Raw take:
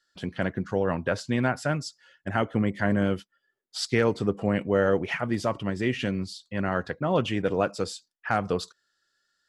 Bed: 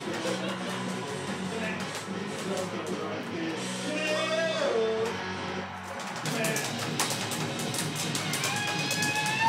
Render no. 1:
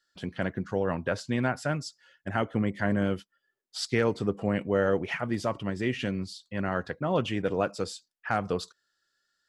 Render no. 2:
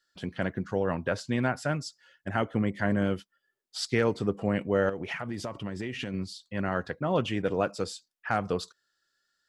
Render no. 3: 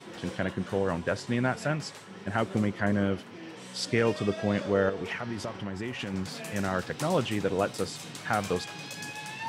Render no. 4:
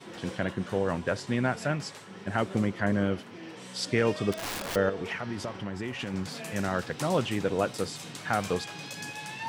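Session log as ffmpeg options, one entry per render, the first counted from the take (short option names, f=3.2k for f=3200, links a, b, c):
-af "volume=-2.5dB"
-filter_complex "[0:a]asettb=1/sr,asplit=3[a][b][c];[a]atrim=end=4.894[d];[b]atrim=start=4.89:end=6.14,asetpts=PTS-STARTPTS,afade=t=in:d=0.004:c=qsin,afade=t=out:st=1.246:d=0.004:c=qsin,acompressor=threshold=-29dB:ratio=12:attack=3.2:release=140:knee=1:detection=peak[e];[c]atrim=start=6.136[f];[d][e]acrossfade=d=0.004:c1=hsin:c2=qsin[g];[g][f]acrossfade=d=0.004:c1=qsin:c2=hsin"
-filter_complex "[1:a]volume=-11dB[a];[0:a][a]amix=inputs=2:normalize=0"
-filter_complex "[0:a]asettb=1/sr,asplit=3[a][b][c];[a]atrim=end=4.324[d];[b]atrim=start=4.32:end=4.76,asetpts=PTS-STARTPTS,afade=t=in:d=0.004:c=qsin,afade=t=out:st=0.436:d=0.004:c=qsin,aeval=exprs='(mod(28.2*val(0)+1,2)-1)/28.2':c=same[e];[c]atrim=start=4.756[f];[d][e]acrossfade=d=0.004:c1=hsin:c2=qsin[g];[g][f]acrossfade=d=0.004:c1=qsin:c2=hsin"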